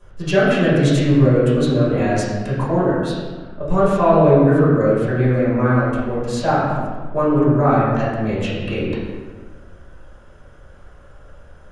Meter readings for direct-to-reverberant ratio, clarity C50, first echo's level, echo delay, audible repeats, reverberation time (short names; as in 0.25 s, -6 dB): -11.5 dB, -1.0 dB, none, none, none, 1.4 s